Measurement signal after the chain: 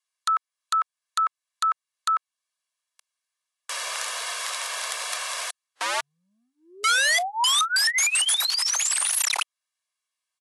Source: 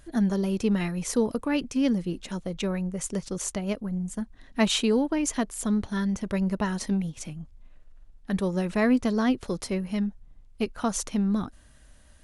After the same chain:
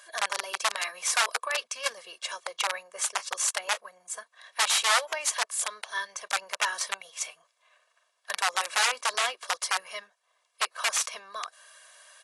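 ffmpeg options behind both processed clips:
ffmpeg -i in.wav -filter_complex "[0:a]asplit=2[link_01][link_02];[link_02]acompressor=threshold=-37dB:ratio=12,volume=1dB[link_03];[link_01][link_03]amix=inputs=2:normalize=0,aecho=1:1:1.8:0.97,aeval=exprs='(mod(6.68*val(0)+1,2)-1)/6.68':channel_layout=same,highpass=frequency=770:width=0.5412,highpass=frequency=770:width=1.3066" -ar 24000 -c:a aac -b:a 48k out.aac

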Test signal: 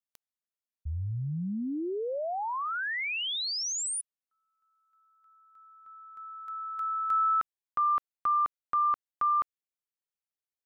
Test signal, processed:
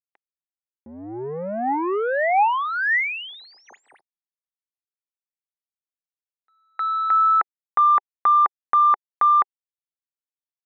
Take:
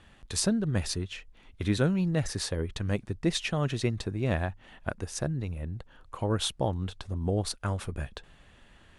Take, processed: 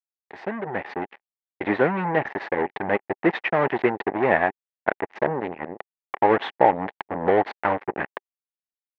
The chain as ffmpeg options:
ffmpeg -i in.wav -af "acrusher=bits=4:mix=0:aa=0.5,dynaudnorm=framelen=130:gausssize=13:maxgain=12.5dB,highpass=350,equalizer=frequency=390:width_type=q:width=4:gain=3,equalizer=frequency=820:width_type=q:width=4:gain=9,equalizer=frequency=1300:width_type=q:width=4:gain=-4,equalizer=frequency=1900:width_type=q:width=4:gain=7,lowpass=frequency=2200:width=0.5412,lowpass=frequency=2200:width=1.3066,volume=-1dB" out.wav

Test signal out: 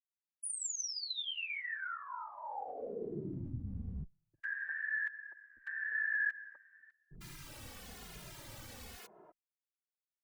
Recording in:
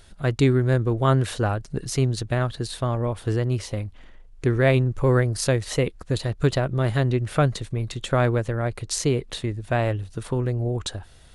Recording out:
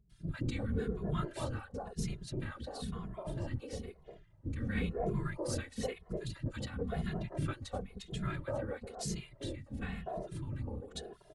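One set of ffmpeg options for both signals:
ffmpeg -i in.wav -filter_complex "[0:a]acrossover=split=310|1000[link_01][link_02][link_03];[link_03]adelay=100[link_04];[link_02]adelay=350[link_05];[link_01][link_05][link_04]amix=inputs=3:normalize=0,afftfilt=real='hypot(re,im)*cos(2*PI*random(0))':imag='hypot(re,im)*sin(2*PI*random(1))':win_size=512:overlap=0.75,asplit=2[link_06][link_07];[link_07]adelay=2.4,afreqshift=-0.99[link_08];[link_06][link_08]amix=inputs=2:normalize=1,volume=-5.5dB" out.wav

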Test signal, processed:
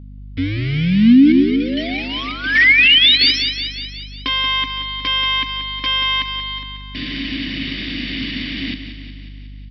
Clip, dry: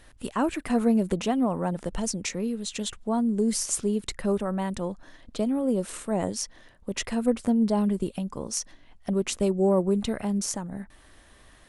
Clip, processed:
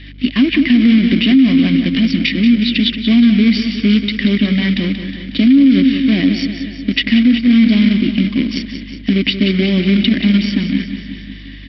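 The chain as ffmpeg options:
ffmpeg -i in.wav -filter_complex "[0:a]aecho=1:1:1.1:0.65,acompressor=threshold=-22dB:ratio=8,crystalizer=i=2.5:c=0,aresample=11025,acrusher=bits=2:mode=log:mix=0:aa=0.000001,aresample=44100,asplit=3[link_01][link_02][link_03];[link_01]bandpass=frequency=270:width_type=q:width=8,volume=0dB[link_04];[link_02]bandpass=frequency=2290:width_type=q:width=8,volume=-6dB[link_05];[link_03]bandpass=frequency=3010:width_type=q:width=8,volume=-9dB[link_06];[link_04][link_05][link_06]amix=inputs=3:normalize=0,aeval=exprs='val(0)+0.000794*(sin(2*PI*50*n/s)+sin(2*PI*2*50*n/s)/2+sin(2*PI*3*50*n/s)/3+sin(2*PI*4*50*n/s)/4+sin(2*PI*5*50*n/s)/5)':channel_layout=same,asplit=2[link_07][link_08];[link_08]aecho=0:1:182|364|546|728|910|1092|1274:0.316|0.187|0.11|0.0649|0.0383|0.0226|0.0133[link_09];[link_07][link_09]amix=inputs=2:normalize=0,alimiter=level_in=30dB:limit=-1dB:release=50:level=0:latency=1,volume=-2.5dB" out.wav

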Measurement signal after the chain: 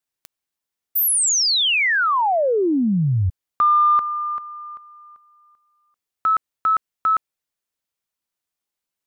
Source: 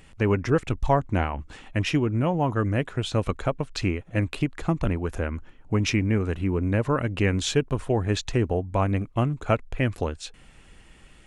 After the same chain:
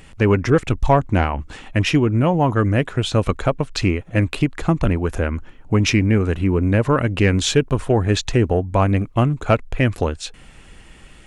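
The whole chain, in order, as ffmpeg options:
ffmpeg -i in.wav -af "acontrast=87" out.wav

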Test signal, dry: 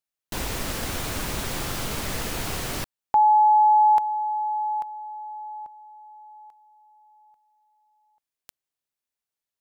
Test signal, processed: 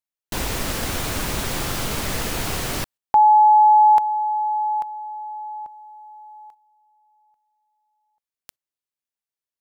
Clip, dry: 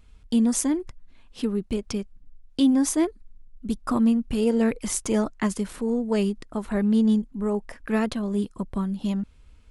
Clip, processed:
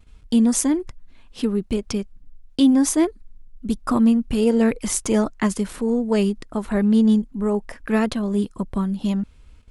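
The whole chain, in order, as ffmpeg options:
ffmpeg -i in.wav -af "agate=range=-9dB:threshold=-52dB:ratio=16:release=95:detection=rms,volume=4dB" out.wav

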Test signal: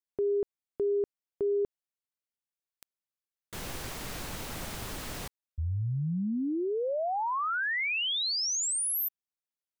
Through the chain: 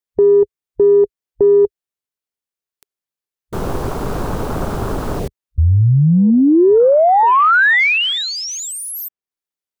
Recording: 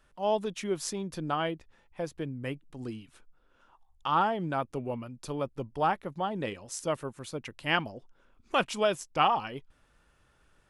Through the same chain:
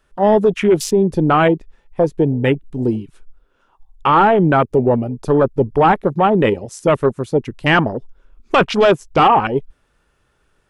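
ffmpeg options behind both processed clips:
ffmpeg -i in.wav -filter_complex "[0:a]afwtdn=0.00891,equalizer=frequency=410:width=4.6:gain=5.5,acrossover=split=2500[link_01][link_02];[link_02]acompressor=threshold=-45dB:ratio=10:attack=26:release=488:knee=6:detection=peak[link_03];[link_01][link_03]amix=inputs=2:normalize=0,apsyclip=26dB,volume=-6.5dB" out.wav

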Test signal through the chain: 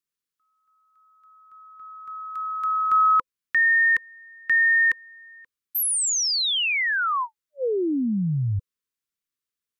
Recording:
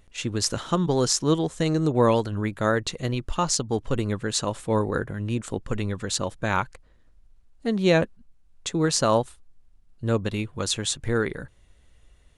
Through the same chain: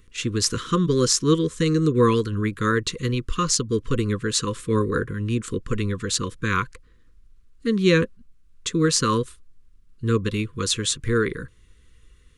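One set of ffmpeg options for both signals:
ffmpeg -i in.wav -af "asuperstop=centerf=720:order=20:qfactor=1.5,volume=3dB" out.wav

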